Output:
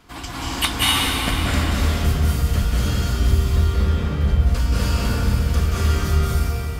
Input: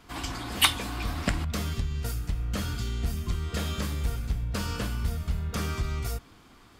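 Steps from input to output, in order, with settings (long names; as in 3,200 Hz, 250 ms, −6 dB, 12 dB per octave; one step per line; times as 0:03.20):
in parallel at +3 dB: speech leveller within 3 dB 0.5 s
0:03.53–0:04.21: on the sum: head-to-tape spacing loss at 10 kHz 26 dB
convolution reverb RT60 3.5 s, pre-delay 173 ms, DRR −8 dB
level −7.5 dB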